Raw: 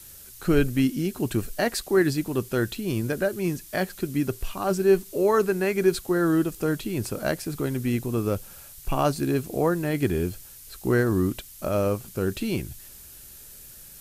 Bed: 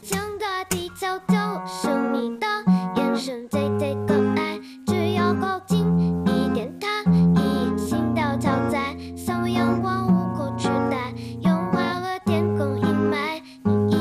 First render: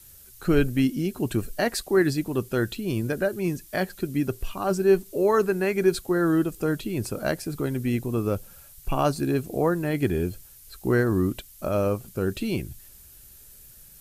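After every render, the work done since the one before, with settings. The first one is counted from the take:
broadband denoise 6 dB, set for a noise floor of −46 dBFS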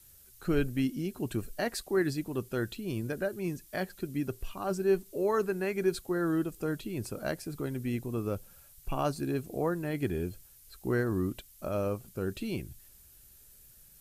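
level −7.5 dB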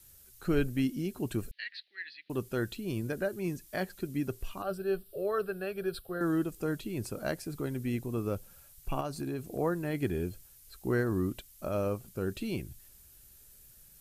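0:01.51–0:02.30: elliptic band-pass filter 1,800–4,200 Hz
0:04.62–0:06.21: phaser with its sweep stopped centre 1,400 Hz, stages 8
0:09.00–0:09.58: downward compressor, threshold −31 dBFS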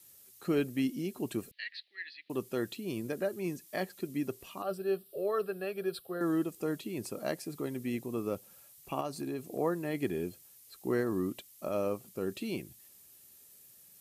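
high-pass filter 190 Hz 12 dB per octave
notch filter 1,500 Hz, Q 6.3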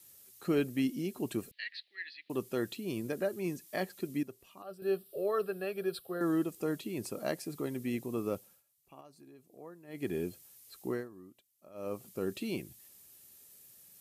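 0:04.23–0:04.82: clip gain −10.5 dB
0:08.35–0:10.15: duck −18.5 dB, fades 0.28 s
0:10.80–0:12.03: duck −20 dB, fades 0.29 s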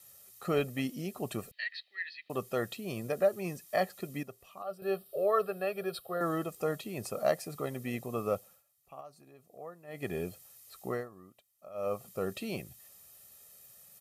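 parametric band 880 Hz +6.5 dB 1.4 octaves
comb filter 1.6 ms, depth 58%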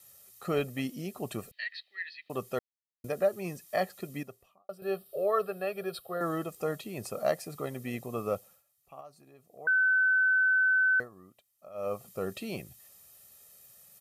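0:02.59–0:03.04: silence
0:04.27–0:04.69: fade out and dull
0:09.67–0:11.00: beep over 1,520 Hz −21.5 dBFS

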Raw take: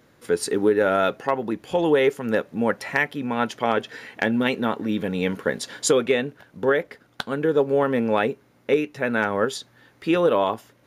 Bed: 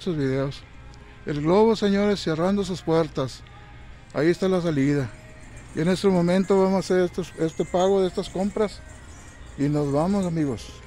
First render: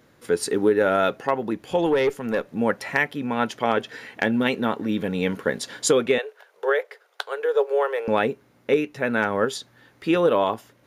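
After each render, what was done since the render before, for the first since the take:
0:01.86–0:02.48: tube saturation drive 13 dB, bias 0.3
0:06.18–0:08.08: elliptic high-pass filter 420 Hz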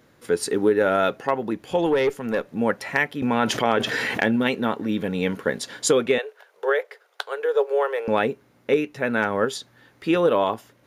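0:03.22–0:04.36: envelope flattener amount 70%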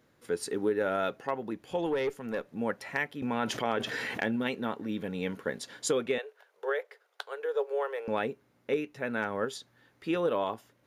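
level −9.5 dB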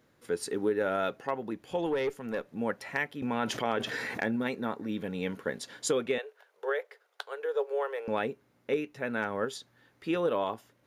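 0:03.97–0:04.87: parametric band 3,000 Hz −11.5 dB 0.23 octaves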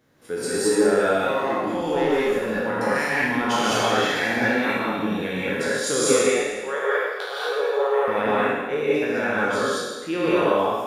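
peak hold with a decay on every bin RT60 1.34 s
reverb whose tail is shaped and stops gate 240 ms rising, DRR −6.5 dB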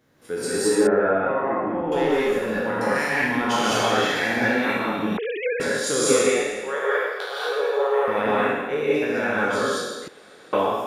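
0:00.87–0:01.92: low-pass filter 1,900 Hz 24 dB per octave
0:05.17–0:05.60: three sine waves on the formant tracks
0:10.08–0:10.53: fill with room tone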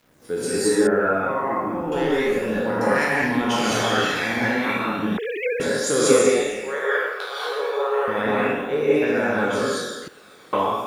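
bit-depth reduction 10 bits, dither none
phase shifter 0.33 Hz, delay 1 ms, feedback 33%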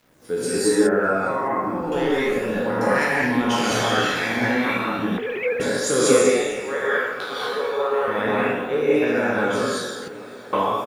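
double-tracking delay 16 ms −11 dB
feedback echo with a low-pass in the loop 605 ms, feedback 81%, low-pass 3,200 Hz, level −20 dB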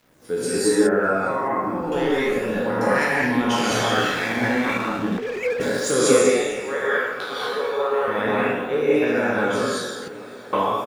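0:03.94–0:05.92: slack as between gear wheels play −30.5 dBFS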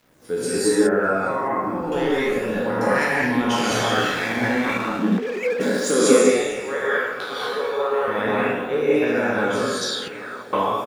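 0:04.98–0:06.31: low shelf with overshoot 150 Hz −9 dB, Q 3
0:09.81–0:10.42: parametric band 5,800 Hz → 1,100 Hz +15 dB

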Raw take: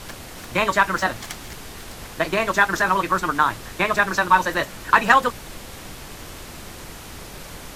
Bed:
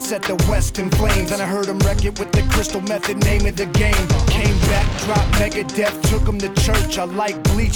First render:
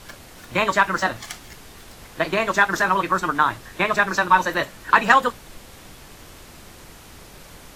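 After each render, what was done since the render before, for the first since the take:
noise reduction from a noise print 6 dB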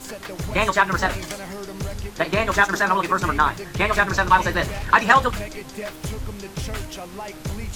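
mix in bed −13.5 dB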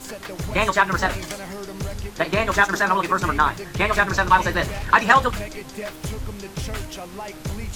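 no processing that can be heard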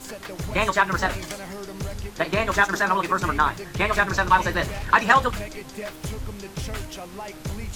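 level −2 dB

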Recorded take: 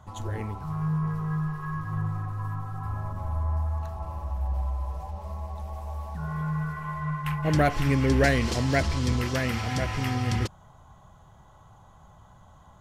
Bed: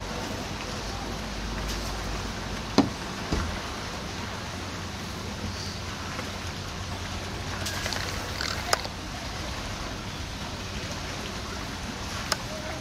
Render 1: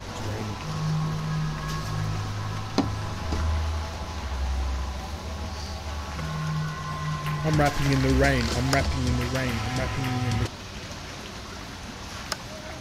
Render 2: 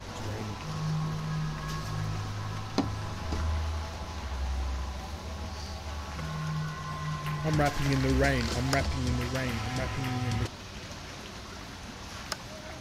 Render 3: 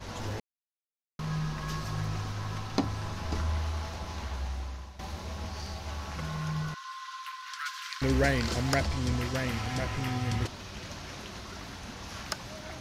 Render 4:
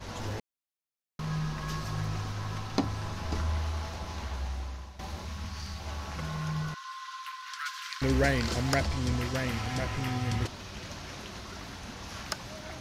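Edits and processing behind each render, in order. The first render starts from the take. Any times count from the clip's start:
mix in bed −3.5 dB
level −4.5 dB
0:00.40–0:01.19: silence; 0:04.26–0:04.99: fade out linear, to −13 dB; 0:06.74–0:08.02: Chebyshev high-pass with heavy ripple 1,000 Hz, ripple 6 dB
0:05.25–0:05.80: flat-topped bell 500 Hz −8 dB

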